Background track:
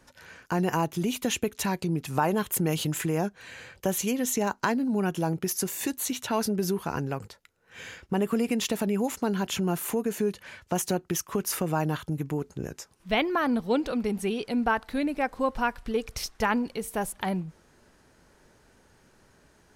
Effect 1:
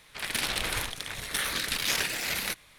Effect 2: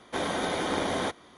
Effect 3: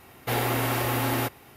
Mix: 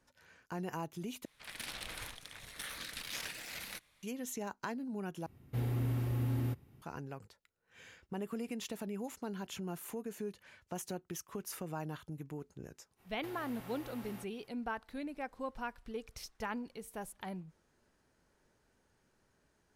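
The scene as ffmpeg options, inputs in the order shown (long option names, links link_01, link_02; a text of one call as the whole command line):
ffmpeg -i bed.wav -i cue0.wav -i cue1.wav -i cue2.wav -filter_complex "[3:a]asplit=2[link_01][link_02];[0:a]volume=-14dB[link_03];[1:a]bandreject=frequency=390:width=8.8[link_04];[link_01]firequalizer=gain_entry='entry(140,0);entry(370,-12);entry(710,-21)':delay=0.05:min_phase=1[link_05];[link_02]acrossover=split=97|2600[link_06][link_07][link_08];[link_06]acompressor=threshold=-45dB:ratio=4[link_09];[link_07]acompressor=threshold=-33dB:ratio=4[link_10];[link_08]acompressor=threshold=-41dB:ratio=4[link_11];[link_09][link_10][link_11]amix=inputs=3:normalize=0[link_12];[link_03]asplit=3[link_13][link_14][link_15];[link_13]atrim=end=1.254[link_16];[link_04]atrim=end=2.78,asetpts=PTS-STARTPTS,volume=-14dB[link_17];[link_14]atrim=start=4.026:end=5.264[link_18];[link_05]atrim=end=1.56,asetpts=PTS-STARTPTS,volume=-2dB[link_19];[link_15]atrim=start=6.816[link_20];[link_12]atrim=end=1.56,asetpts=PTS-STARTPTS,volume=-17.5dB,afade=type=in:duration=0.05,afade=type=out:start_time=1.51:duration=0.05,adelay=12960[link_21];[link_16][link_17]acrossfade=duration=0.004:curve1=hsin:curve2=hsin[link_22];[link_22][link_18]acrossfade=duration=0.004:curve1=hsin:curve2=hsin[link_23];[link_23][link_19]acrossfade=duration=0.004:curve1=hsin:curve2=hsin[link_24];[link_24][link_20]acrossfade=duration=0.004:curve1=hsin:curve2=hsin[link_25];[link_25][link_21]amix=inputs=2:normalize=0" out.wav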